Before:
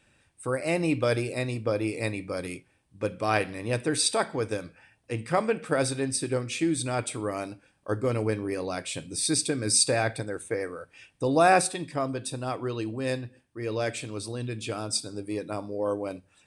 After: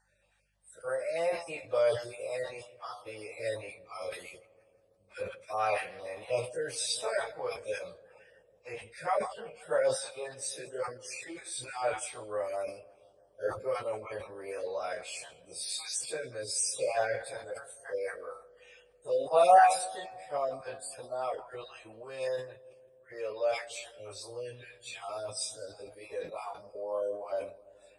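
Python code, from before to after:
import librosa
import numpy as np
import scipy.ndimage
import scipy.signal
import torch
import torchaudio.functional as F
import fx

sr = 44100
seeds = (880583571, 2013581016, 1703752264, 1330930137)

p1 = fx.spec_dropout(x, sr, seeds[0], share_pct=34)
p2 = fx.level_steps(p1, sr, step_db=21)
p3 = p1 + (p2 * librosa.db_to_amplitude(-1.0))
p4 = fx.dmg_buzz(p3, sr, base_hz=50.0, harmonics=4, level_db=-59.0, tilt_db=-5, odd_only=False)
p5 = fx.stretch_vocoder_free(p4, sr, factor=1.7)
p6 = fx.low_shelf_res(p5, sr, hz=390.0, db=-12.0, q=3.0)
p7 = p6 + fx.echo_filtered(p6, sr, ms=166, feedback_pct=81, hz=1100.0, wet_db=-20.5, dry=0)
p8 = fx.sustainer(p7, sr, db_per_s=120.0)
y = p8 * librosa.db_to_amplitude(-6.0)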